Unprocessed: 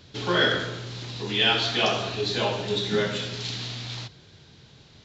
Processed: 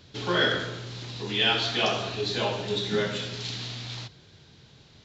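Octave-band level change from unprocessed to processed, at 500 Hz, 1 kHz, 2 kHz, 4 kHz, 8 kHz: -2.0 dB, -2.0 dB, -2.0 dB, -2.0 dB, no reading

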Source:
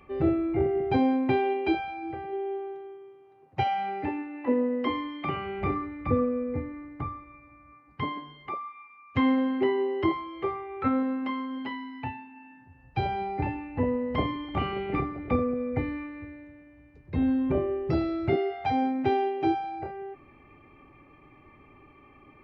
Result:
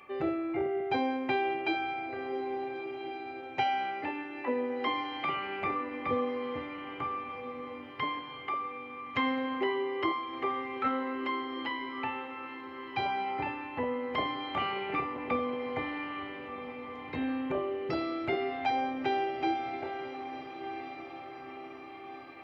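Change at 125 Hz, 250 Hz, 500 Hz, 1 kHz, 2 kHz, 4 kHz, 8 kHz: -14.5 dB, -8.0 dB, -5.0 dB, -1.0 dB, +2.5 dB, +3.0 dB, no reading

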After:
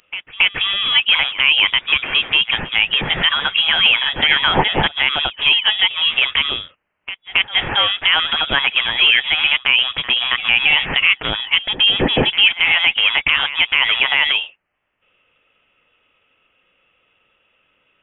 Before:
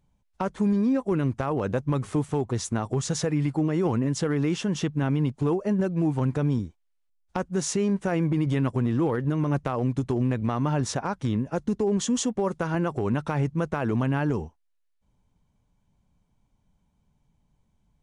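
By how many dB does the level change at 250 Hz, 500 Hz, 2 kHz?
-7.5 dB, -1.5 dB, +24.5 dB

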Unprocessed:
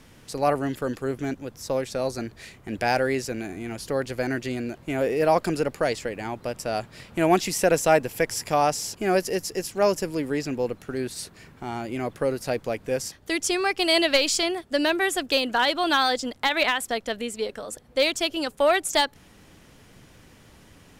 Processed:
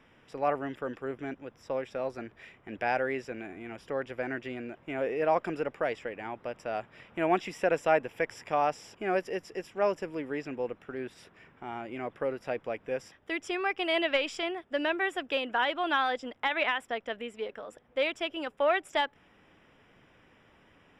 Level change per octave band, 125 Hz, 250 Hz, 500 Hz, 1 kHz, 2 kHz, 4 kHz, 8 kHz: -12.5 dB, -9.0 dB, -6.5 dB, -5.5 dB, -5.0 dB, -11.0 dB, -22.5 dB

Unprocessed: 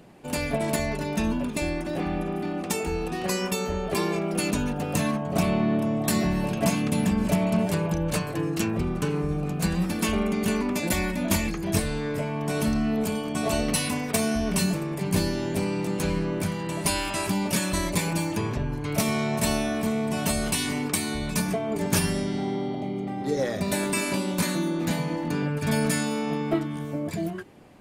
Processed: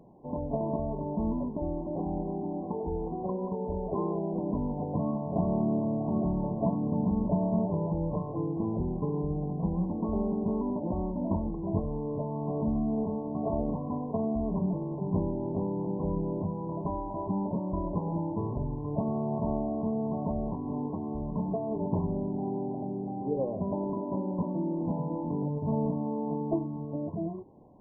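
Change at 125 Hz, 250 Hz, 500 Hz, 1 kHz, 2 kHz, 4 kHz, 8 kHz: -4.0 dB, -4.0 dB, -4.0 dB, -5.0 dB, under -40 dB, under -40 dB, under -40 dB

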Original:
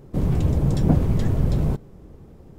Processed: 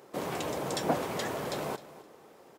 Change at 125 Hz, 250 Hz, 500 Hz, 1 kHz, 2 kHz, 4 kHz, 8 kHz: -23.5 dB, -13.5 dB, -2.0 dB, +3.5 dB, +5.0 dB, +5.0 dB, no reading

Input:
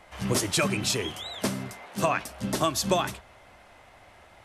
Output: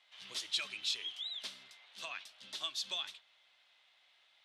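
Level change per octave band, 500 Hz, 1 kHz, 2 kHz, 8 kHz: -28.5 dB, -23.0 dB, -12.5 dB, -16.5 dB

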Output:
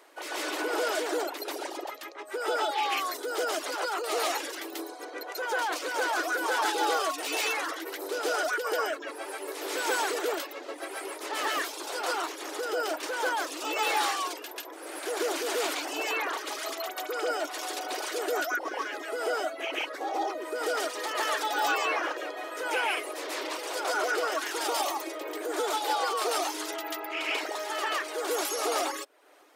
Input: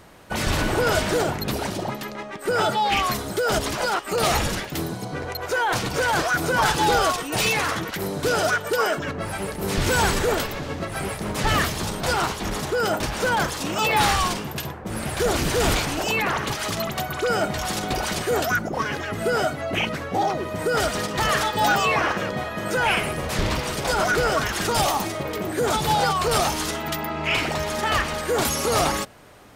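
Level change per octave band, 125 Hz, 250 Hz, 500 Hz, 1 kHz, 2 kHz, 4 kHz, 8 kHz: under -40 dB, -11.5 dB, -7.0 dB, -7.0 dB, -6.5 dB, -7.0 dB, -7.0 dB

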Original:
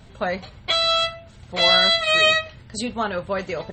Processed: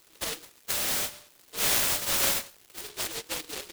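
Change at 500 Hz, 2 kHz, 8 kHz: -16.0 dB, -12.5 dB, +9.0 dB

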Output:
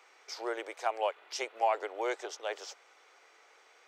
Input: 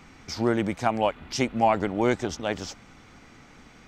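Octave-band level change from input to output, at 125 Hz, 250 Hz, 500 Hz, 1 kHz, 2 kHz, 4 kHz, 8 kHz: under -40 dB, -21.5 dB, -8.0 dB, -7.0 dB, -7.0 dB, -7.0 dB, -7.0 dB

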